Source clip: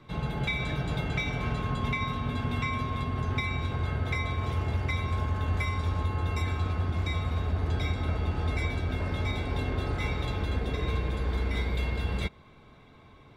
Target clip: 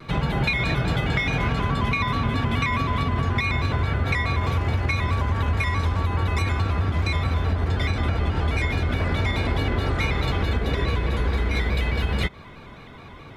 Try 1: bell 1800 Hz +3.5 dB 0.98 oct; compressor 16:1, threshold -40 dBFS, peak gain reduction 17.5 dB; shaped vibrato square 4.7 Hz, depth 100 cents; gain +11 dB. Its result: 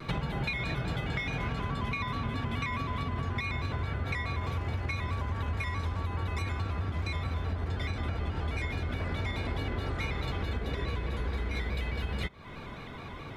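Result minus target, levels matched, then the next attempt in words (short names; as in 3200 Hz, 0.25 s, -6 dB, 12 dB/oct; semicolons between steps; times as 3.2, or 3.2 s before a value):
compressor: peak gain reduction +10 dB
bell 1800 Hz +3.5 dB 0.98 oct; compressor 16:1, threshold -29.5 dBFS, peak gain reduction 7.5 dB; shaped vibrato square 4.7 Hz, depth 100 cents; gain +11 dB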